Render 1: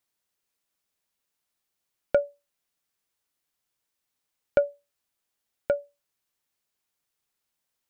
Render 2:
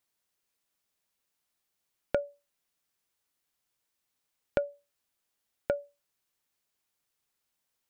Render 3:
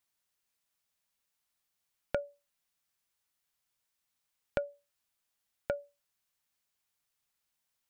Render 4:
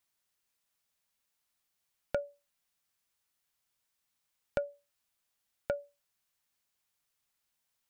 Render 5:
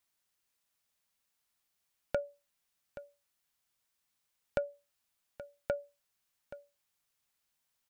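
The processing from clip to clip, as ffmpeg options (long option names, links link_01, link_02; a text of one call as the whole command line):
ffmpeg -i in.wav -af "acompressor=threshold=-26dB:ratio=4" out.wav
ffmpeg -i in.wav -af "equalizer=frequency=370:width_type=o:width=1.4:gain=-6,volume=-1dB" out.wav
ffmpeg -i in.wav -af "asoftclip=type=tanh:threshold=-17.5dB,volume=1dB" out.wav
ffmpeg -i in.wav -af "aecho=1:1:826:0.178" out.wav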